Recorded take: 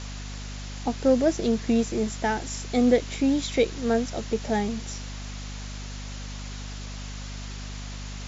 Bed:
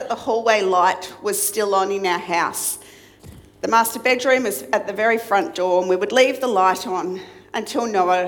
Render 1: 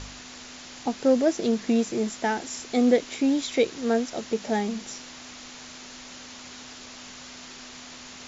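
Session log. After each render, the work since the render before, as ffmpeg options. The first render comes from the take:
ffmpeg -i in.wav -af "bandreject=frequency=50:width_type=h:width=4,bandreject=frequency=100:width_type=h:width=4,bandreject=frequency=150:width_type=h:width=4,bandreject=frequency=200:width_type=h:width=4" out.wav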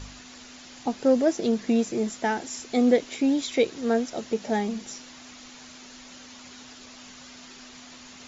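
ffmpeg -i in.wav -af "afftdn=noise_reduction=6:noise_floor=-44" out.wav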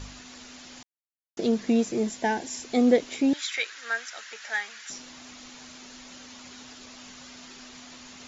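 ffmpeg -i in.wav -filter_complex "[0:a]asettb=1/sr,asplit=3[link_01][link_02][link_03];[link_01]atrim=end=2.084[link_04];[link_02]atrim=start=2.08:end=2.64,asetpts=PTS-STARTPTS,afade=type=in:duration=0.004:curve=qsin,afade=type=out:start_time=0.556:duration=0.004:curve=qsin,asuperstop=centerf=1300:order=4:qfactor=5.6[link_05];[link_03]atrim=start=2.636[link_06];[link_04][link_05]acrossfade=duration=0.004:curve1=hsin:curve2=qsin[link_07];[link_07][link_06]acrossfade=duration=0.004:curve1=qsin:curve2=hsin,asettb=1/sr,asplit=3[link_08][link_09][link_10];[link_08]atrim=end=3.334[link_11];[link_09]atrim=start=3.33:end=4.9,asetpts=PTS-STARTPTS,afade=type=in:duration=0.004:curve=qsin,afade=type=out:start_time=1.566:duration=0.004:curve=qsin,highpass=frequency=1600:width_type=q:width=3.1[link_12];[link_10]atrim=start=4.896[link_13];[link_11][link_12]acrossfade=duration=0.004:curve1=hsin:curve2=qsin[link_14];[link_14][link_13]acrossfade=duration=0.004:curve1=qsin:curve2=hsin,asplit=3[link_15][link_16][link_17];[link_15]atrim=end=0.83,asetpts=PTS-STARTPTS,afade=type=out:start_time=0.826:duration=0.004:curve=hsin[link_18];[link_16]atrim=start=0.83:end=1.37,asetpts=PTS-STARTPTS,volume=0[link_19];[link_17]atrim=start=1.37,asetpts=PTS-STARTPTS,afade=type=in:duration=0.004:curve=hsin[link_20];[link_18][link_19][link_20]concat=n=3:v=0:a=1" out.wav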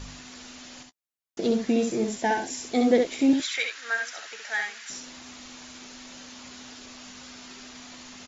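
ffmpeg -i in.wav -filter_complex "[0:a]asplit=2[link_01][link_02];[link_02]adelay=15,volume=-14dB[link_03];[link_01][link_03]amix=inputs=2:normalize=0,aecho=1:1:67|79:0.562|0.15" out.wav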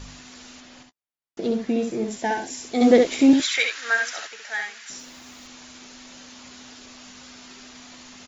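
ffmpeg -i in.wav -filter_complex "[0:a]asettb=1/sr,asplit=3[link_01][link_02][link_03];[link_01]atrim=end=0.604[link_04];[link_02]atrim=start=0.6:end=2.11,asetpts=PTS-STARTPTS,afade=type=in:duration=0.004:curve=qsin,afade=type=out:start_time=1.506:duration=0.004:curve=qsin,highshelf=frequency=5100:gain=-10[link_05];[link_03]atrim=start=2.106[link_06];[link_04][link_05]acrossfade=duration=0.004:curve1=hsin:curve2=qsin[link_07];[link_07][link_06]acrossfade=duration=0.004:curve1=qsin:curve2=hsin,asplit=3[link_08][link_09][link_10];[link_08]afade=type=out:start_time=2.8:duration=0.02[link_11];[link_09]acontrast=57,afade=type=in:start_time=2.8:duration=0.02,afade=type=out:start_time=4.26:duration=0.02[link_12];[link_10]afade=type=in:start_time=4.26:duration=0.02[link_13];[link_11][link_12][link_13]amix=inputs=3:normalize=0,asettb=1/sr,asplit=3[link_14][link_15][link_16];[link_14]atrim=end=4.994[link_17];[link_15]atrim=start=4.99:end=5.47,asetpts=PTS-STARTPTS,afade=type=in:duration=0.004:curve=qsin,afade=type=out:start_time=0.476:duration=0.004:curve=qsin,acrusher=bits=8:mix=0:aa=0.5[link_18];[link_16]atrim=start=5.466[link_19];[link_17][link_18]acrossfade=duration=0.004:curve1=hsin:curve2=qsin[link_20];[link_20][link_19]acrossfade=duration=0.004:curve1=qsin:curve2=hsin" out.wav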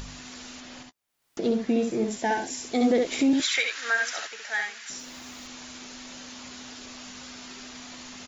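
ffmpeg -i in.wav -af "acompressor=mode=upward:threshold=-37dB:ratio=2.5,alimiter=limit=-15dB:level=0:latency=1:release=179" out.wav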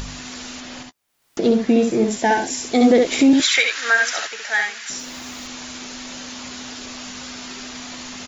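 ffmpeg -i in.wav -af "volume=8.5dB" out.wav

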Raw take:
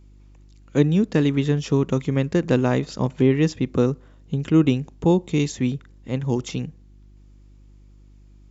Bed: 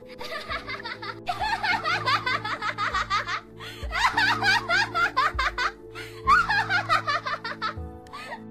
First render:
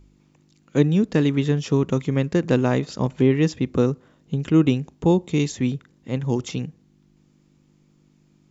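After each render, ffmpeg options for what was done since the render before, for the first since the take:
ffmpeg -i in.wav -af "bandreject=frequency=50:width_type=h:width=4,bandreject=frequency=100:width_type=h:width=4" out.wav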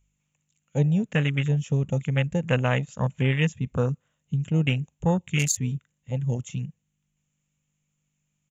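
ffmpeg -i in.wav -af "firequalizer=gain_entry='entry(150,0);entry(330,-18);entry(520,-2);entry(870,-2);entry(2800,10);entry(4700,-6);entry(6800,15);entry(10000,8)':delay=0.05:min_phase=1,afwtdn=0.0398" out.wav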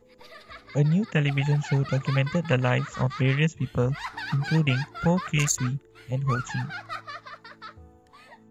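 ffmpeg -i in.wav -i bed.wav -filter_complex "[1:a]volume=-13dB[link_01];[0:a][link_01]amix=inputs=2:normalize=0" out.wav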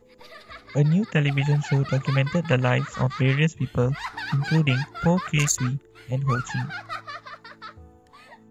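ffmpeg -i in.wav -af "volume=2dB" out.wav

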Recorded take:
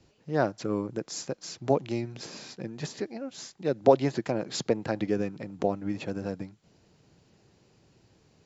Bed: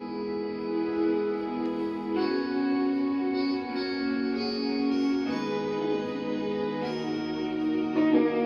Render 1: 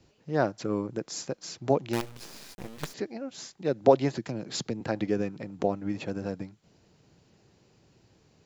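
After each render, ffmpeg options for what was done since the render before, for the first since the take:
ffmpeg -i in.wav -filter_complex "[0:a]asettb=1/sr,asplit=3[link_01][link_02][link_03];[link_01]atrim=end=1.934[link_04];[link_02]atrim=start=1.93:end=2.94,asetpts=PTS-STARTPTS,afade=type=in:duration=0.004:curve=qsin,afade=type=out:start_time=1.006:duration=0.004:curve=qsin,acrusher=bits=5:dc=4:mix=0:aa=0.000001[link_05];[link_03]atrim=start=2.936[link_06];[link_04][link_05]acrossfade=duration=0.004:curve1=hsin:curve2=qsin[link_07];[link_07][link_06]acrossfade=duration=0.004:curve1=qsin:curve2=hsin,asettb=1/sr,asplit=3[link_08][link_09][link_10];[link_08]atrim=end=4.174[link_11];[link_09]atrim=start=4.17:end=4.81,asetpts=PTS-STARTPTS,afade=type=in:duration=0.004:curve=qsin,afade=type=out:start_time=0.636:duration=0.004:curve=qsin,acrossover=split=300|3000[link_12][link_13][link_14];[link_13]acompressor=threshold=-39dB:ratio=6:attack=3.2:release=140:knee=2.83:detection=peak[link_15];[link_12][link_15][link_14]amix=inputs=3:normalize=0[link_16];[link_10]atrim=start=4.806[link_17];[link_11][link_16]acrossfade=duration=0.004:curve1=hsin:curve2=qsin[link_18];[link_18][link_17]acrossfade=duration=0.004:curve1=qsin:curve2=hsin" out.wav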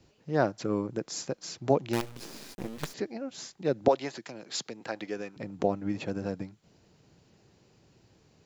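ffmpeg -i in.wav -filter_complex "[0:a]asettb=1/sr,asplit=3[link_01][link_02][link_03];[link_01]atrim=end=2.164[link_04];[link_02]atrim=start=2.16:end=2.78,asetpts=PTS-STARTPTS,afade=type=in:duration=0.004:curve=qsin,afade=type=out:start_time=0.616:duration=0.004:curve=qsin,equalizer=frequency=290:width=0.88:gain=6.5[link_05];[link_03]atrim=start=2.776[link_06];[link_04][link_05]acrossfade=duration=0.004:curve1=hsin:curve2=qsin[link_07];[link_07][link_06]acrossfade=duration=0.004:curve1=qsin:curve2=hsin,asettb=1/sr,asplit=3[link_08][link_09][link_10];[link_08]atrim=end=3.884[link_11];[link_09]atrim=start=3.88:end=5.37,asetpts=PTS-STARTPTS,afade=type=in:duration=0.004:curve=qsin,afade=type=out:start_time=1.486:duration=0.004:curve=qsin,highpass=frequency=850:poles=1[link_12];[link_10]atrim=start=5.366[link_13];[link_11][link_12]acrossfade=duration=0.004:curve1=hsin:curve2=qsin[link_14];[link_14][link_13]acrossfade=duration=0.004:curve1=qsin:curve2=hsin" out.wav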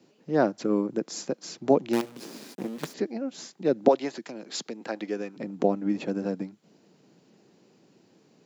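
ffmpeg -i in.wav -af "highpass=frequency=200:width=0.5412,highpass=frequency=200:width=1.3066,lowshelf=frequency=370:gain=10" out.wav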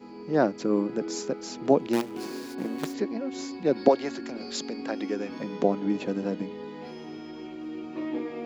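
ffmpeg -i in.wav -i bed.wav -filter_complex "[1:a]volume=-9.5dB[link_01];[0:a][link_01]amix=inputs=2:normalize=0" out.wav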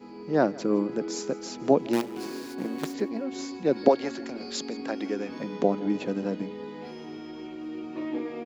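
ffmpeg -i in.wav -af "aecho=1:1:164|328|492:0.0841|0.0337|0.0135" out.wav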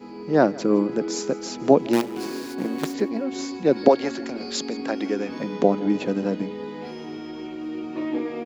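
ffmpeg -i in.wav -af "volume=5dB,alimiter=limit=-1dB:level=0:latency=1" out.wav

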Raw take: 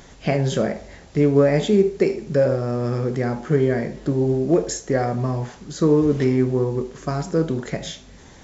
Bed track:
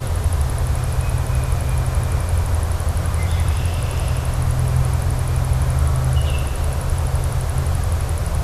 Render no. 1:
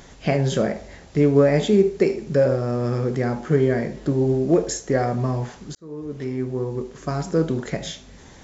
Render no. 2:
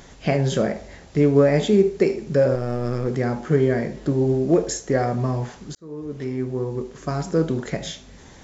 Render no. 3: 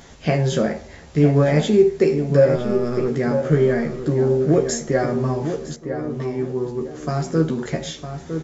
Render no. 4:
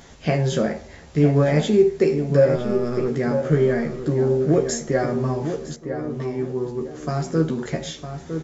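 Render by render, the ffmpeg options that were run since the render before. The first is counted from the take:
ffmpeg -i in.wav -filter_complex "[0:a]asplit=2[link_01][link_02];[link_01]atrim=end=5.75,asetpts=PTS-STARTPTS,afade=type=out:start_time=5.746:duration=0.004:curve=hsin[link_03];[link_02]atrim=start=5.75,asetpts=PTS-STARTPTS,afade=type=in:duration=1.55[link_04];[link_03][link_04]concat=n=2:v=0:a=1" out.wav
ffmpeg -i in.wav -filter_complex "[0:a]asettb=1/sr,asplit=3[link_01][link_02][link_03];[link_01]atrim=end=2.554[link_04];[link_02]atrim=start=2.55:end=3.07,asetpts=PTS-STARTPTS,afade=type=in:duration=0.004:curve=qsin,afade=type=out:start_time=0.516:duration=0.004:curve=qsin,aeval=exprs='if(lt(val(0),0),0.447*val(0),val(0))':channel_layout=same[link_05];[link_03]atrim=start=3.066[link_06];[link_04][link_05]acrossfade=duration=0.004:curve1=hsin:curve2=qsin[link_07];[link_07][link_06]acrossfade=duration=0.004:curve1=qsin:curve2=hsin" out.wav
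ffmpeg -i in.wav -filter_complex "[0:a]asplit=2[link_01][link_02];[link_02]adelay=13,volume=-4dB[link_03];[link_01][link_03]amix=inputs=2:normalize=0,asplit=2[link_04][link_05];[link_05]adelay=958,lowpass=frequency=2000:poles=1,volume=-8dB,asplit=2[link_06][link_07];[link_07]adelay=958,lowpass=frequency=2000:poles=1,volume=0.25,asplit=2[link_08][link_09];[link_09]adelay=958,lowpass=frequency=2000:poles=1,volume=0.25[link_10];[link_04][link_06][link_08][link_10]amix=inputs=4:normalize=0" out.wav
ffmpeg -i in.wav -af "volume=-1.5dB" out.wav

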